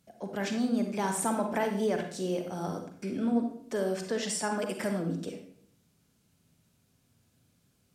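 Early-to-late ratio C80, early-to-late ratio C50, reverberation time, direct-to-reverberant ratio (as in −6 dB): 10.0 dB, 6.0 dB, 0.65 s, 4.0 dB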